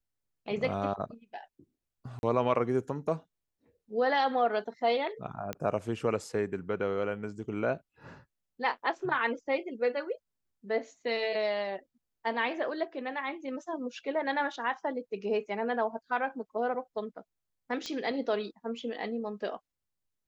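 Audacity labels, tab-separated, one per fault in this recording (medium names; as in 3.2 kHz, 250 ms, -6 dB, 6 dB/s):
2.190000	2.230000	dropout 41 ms
5.530000	5.530000	pop -19 dBFS
17.860000	17.860000	pop -23 dBFS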